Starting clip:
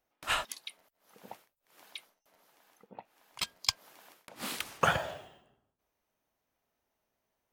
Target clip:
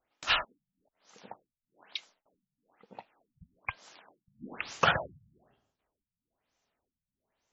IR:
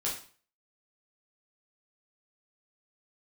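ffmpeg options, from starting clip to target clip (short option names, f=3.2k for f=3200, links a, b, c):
-af "crystalizer=i=3.5:c=0,afftfilt=real='re*lt(b*sr/1024,200*pow(7800/200,0.5+0.5*sin(2*PI*1.1*pts/sr)))':imag='im*lt(b*sr/1024,200*pow(7800/200,0.5+0.5*sin(2*PI*1.1*pts/sr)))':win_size=1024:overlap=0.75"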